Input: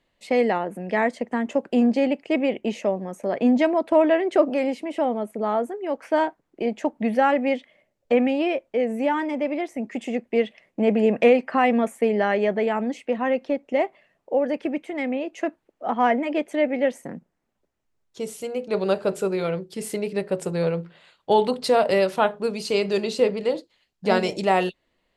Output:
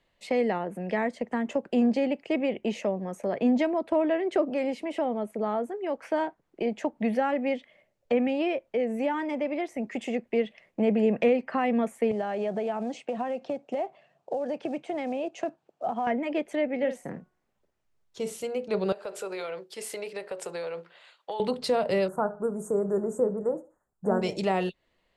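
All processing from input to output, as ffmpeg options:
-filter_complex "[0:a]asettb=1/sr,asplit=3[s0][s1][s2];[s0]atrim=end=12.114[s3];[s1]atrim=start=12.11:end=16.07,asetpts=PTS-STARTPTS,afade=t=in:d=0.004:c=qsin,afade=t=out:st=3.956:d=0.004:c=qsin,acompressor=threshold=0.0631:ratio=6:attack=3.2:release=140:knee=1:detection=peak,acrusher=bits=8:mode=log:mix=0:aa=0.000001,highpass=130,equalizer=f=140:t=q:w=4:g=10,equalizer=f=720:t=q:w=4:g=8,equalizer=f=2000:t=q:w=4:g=-8,lowpass=f=8700:w=0.5412,lowpass=f=8700:w=1.3066[s4];[s2]atrim=start=16.066[s5];[s3][s4]acrossfade=d=0.004:c1=hsin:c2=qsin[s6];[s6][s5]acrossfade=d=0.004:c1=qsin:c2=hsin,asettb=1/sr,asplit=3[s7][s8][s9];[s7]atrim=end=16.774[s10];[s8]atrim=start=16.77:end=18.42,asetpts=PTS-STARTPTS,afade=t=in:d=0.004:c=qsin,afade=t=out:st=1.646:d=0.004:c=qsin,asplit=2[s11][s12];[s12]adelay=49,volume=0.316[s13];[s11][s13]amix=inputs=2:normalize=0,atrim=end_sample=72765,bandreject=f=366.9:t=h:w=4,bandreject=f=733.8:t=h:w=4,bandreject=f=1100.7:t=h:w=4,bandreject=f=1467.6:t=h:w=4[s14];[s9]atrim=start=18.416[s15];[s10][s14]acrossfade=d=0.004:c1=hsin:c2=qsin[s16];[s16][s15]acrossfade=d=0.004:c1=qsin:c2=hsin,asettb=1/sr,asplit=3[s17][s18][s19];[s17]atrim=end=18.924[s20];[s18]atrim=start=18.92:end=21.4,asetpts=PTS-STARTPTS,afade=t=in:d=0.004:c=qsin,afade=t=out:st=2.476:d=0.004:c=qsin,highpass=520,acompressor=threshold=0.0355:ratio=6:attack=3.2:release=140:knee=1:detection=peak[s21];[s19]atrim=start=21.396[s22];[s20][s21]acrossfade=d=0.004:c1=hsin:c2=qsin[s23];[s23][s22]acrossfade=d=0.004:c1=qsin:c2=hsin,asettb=1/sr,asplit=3[s24][s25][s26];[s24]atrim=end=22.084[s27];[s25]atrim=start=22.08:end=24.22,asetpts=PTS-STARTPTS,afade=t=in:d=0.004:c=qsin,afade=t=out:st=2.136:d=0.004:c=qsin,asuperstop=centerf=3400:order=12:qfactor=0.6,aecho=1:1:73|146:0.0841|0.0261,atrim=end_sample=94374[s28];[s26]atrim=start=24.216[s29];[s27][s28]acrossfade=d=0.004:c1=hsin:c2=qsin[s30];[s30][s29]acrossfade=d=0.004:c1=qsin:c2=hsin,equalizer=f=270:w=2:g=-4.5,acrossover=split=360[s31][s32];[s32]acompressor=threshold=0.0251:ratio=2[s33];[s31][s33]amix=inputs=2:normalize=0,highshelf=f=9000:g=-5"

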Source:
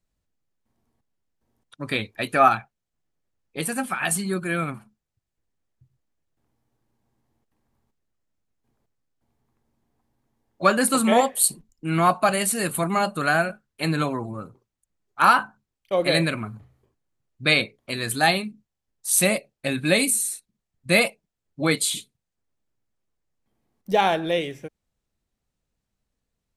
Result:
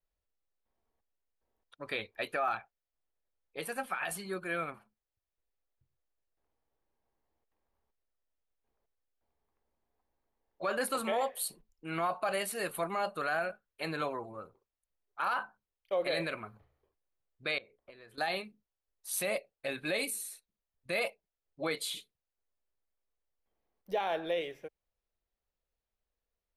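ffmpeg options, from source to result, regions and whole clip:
-filter_complex "[0:a]asettb=1/sr,asplit=3[s0][s1][s2];[s0]atrim=end=17.584[s3];[s1]atrim=start=17.58:end=18.18,asetpts=PTS-STARTPTS,afade=t=in:d=0.004:c=qsin,afade=t=out:st=0.596:d=0.004:c=qsin,lowpass=f=1500:p=1,acompressor=threshold=0.01:ratio=10:attack=3.2:release=140:knee=1:detection=peak[s4];[s2]atrim=start=18.176[s5];[s3][s4]acrossfade=d=0.004:c1=hsin:c2=qsin[s6];[s6][s5]acrossfade=d=0.004:c1=qsin:c2=hsin,equalizer=f=125:t=o:w=1:g=-12,equalizer=f=250:t=o:w=1:g=-9,equalizer=f=500:t=o:w=1:g=4,equalizer=f=8000:t=o:w=1:g=-11,alimiter=limit=0.168:level=0:latency=1:release=30,volume=0.422"

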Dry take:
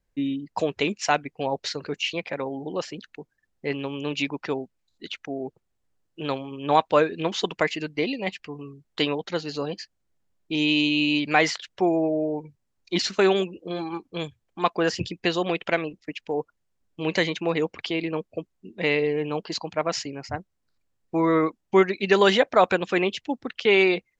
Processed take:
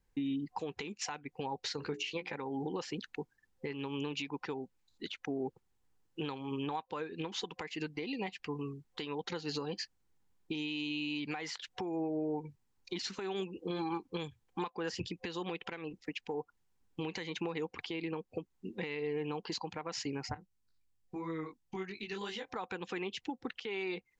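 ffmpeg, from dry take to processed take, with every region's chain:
-filter_complex "[0:a]asettb=1/sr,asplit=3[s0][s1][s2];[s0]atrim=end=1.774[s3];[s1]atrim=start=1.77:end=2.36,asetpts=PTS-STARTPTS,afade=t=in:d=0.004:c=qsin,afade=t=out:st=0.586:d=0.004:c=qsin,bandreject=f=60:t=h:w=6,bandreject=f=120:t=h:w=6,bandreject=f=180:t=h:w=6,bandreject=f=240:t=h:w=6,bandreject=f=300:t=h:w=6,bandreject=f=360:t=h:w=6,bandreject=f=420:t=h:w=6,asplit=2[s4][s5];[s5]adelay=14,volume=0.355[s6];[s4][s6]amix=inputs=2:normalize=0,atrim=end_sample=26019[s7];[s2]atrim=start=2.356[s8];[s3][s7]acrossfade=d=0.004:c1=hsin:c2=qsin[s9];[s9][s8]acrossfade=d=0.004:c1=qsin:c2=hsin,asettb=1/sr,asplit=3[s10][s11][s12];[s10]atrim=end=20.344[s13];[s11]atrim=start=20.34:end=22.54,asetpts=PTS-STARTPTS,afade=t=in:d=0.004:c=qsin,afade=t=out:st=2.196:d=0.004:c=qsin,equalizer=f=680:w=0.36:g=-8.5,acompressor=threshold=0.0178:ratio=6:attack=3.2:release=140:knee=1:detection=peak,flanger=delay=18:depth=3.1:speed=3[s14];[s12]atrim=start=22.536[s15];[s13][s14]acrossfade=d=0.004:c1=hsin:c2=qsin[s16];[s16][s15]acrossfade=d=0.004:c1=qsin:c2=hsin,superequalizer=8b=0.355:9b=1.41,acompressor=threshold=0.0316:ratio=8,alimiter=level_in=1.41:limit=0.0631:level=0:latency=1:release=232,volume=0.708"

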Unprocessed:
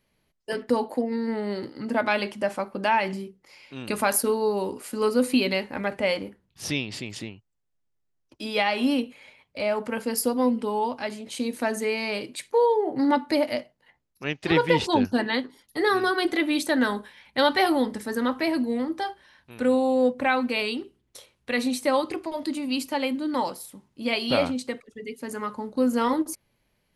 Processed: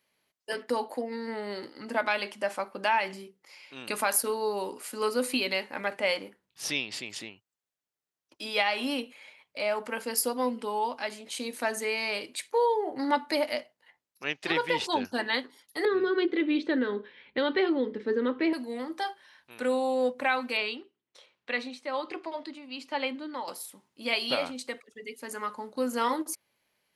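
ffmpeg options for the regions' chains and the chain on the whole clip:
-filter_complex "[0:a]asettb=1/sr,asplit=3[s0][s1][s2];[s0]atrim=end=15.854[s3];[s1]atrim=start=15.85:end=18.53,asetpts=PTS-STARTPTS,afade=t=in:d=0.004:c=qsin,afade=t=out:st=2.676:d=0.004:c=qsin,lowpass=f=3600:w=0.5412,lowpass=f=3600:w=1.3066,lowshelf=f=560:t=q:w=3:g=8[s4];[s2]atrim=start=18.526[s5];[s3][s4]acrossfade=d=0.004:c1=hsin:c2=qsin[s6];[s6][s5]acrossfade=d=0.004:c1=qsin:c2=hsin,asettb=1/sr,asplit=3[s7][s8][s9];[s7]atrim=end=20.574[s10];[s8]atrim=start=20.57:end=23.48,asetpts=PTS-STARTPTS,afade=t=in:d=0.004:c=qsin,afade=t=out:st=2.906:d=0.004:c=qsin,highpass=110,lowpass=4000,tremolo=f=1.2:d=0.62[s11];[s9]atrim=start=23.476[s12];[s10][s11]acrossfade=d=0.004:c1=hsin:c2=qsin[s13];[s13][s12]acrossfade=d=0.004:c1=qsin:c2=hsin,alimiter=limit=0.251:level=0:latency=1:release=416,highpass=f=720:p=1"

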